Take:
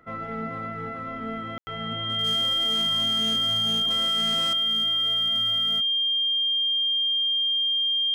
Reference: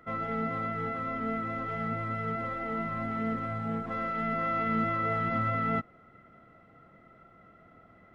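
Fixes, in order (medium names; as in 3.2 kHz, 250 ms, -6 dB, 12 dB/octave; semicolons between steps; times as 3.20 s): clip repair -20.5 dBFS; band-stop 3.2 kHz, Q 30; room tone fill 1.58–1.67 s; trim 0 dB, from 4.53 s +10.5 dB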